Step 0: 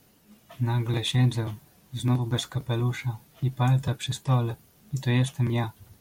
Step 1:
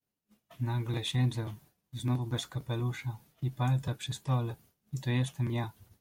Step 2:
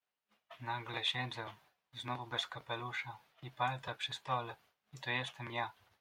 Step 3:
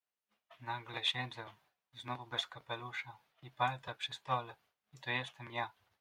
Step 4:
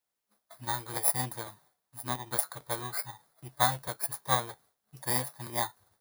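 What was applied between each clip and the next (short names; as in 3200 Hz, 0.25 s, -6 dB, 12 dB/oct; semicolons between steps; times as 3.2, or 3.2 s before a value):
expander -46 dBFS; gain -6.5 dB
three-band isolator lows -22 dB, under 590 Hz, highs -19 dB, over 4100 Hz; gain +4.5 dB
upward expander 1.5:1, over -47 dBFS; gain +2.5 dB
FFT order left unsorted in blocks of 16 samples; gain +7.5 dB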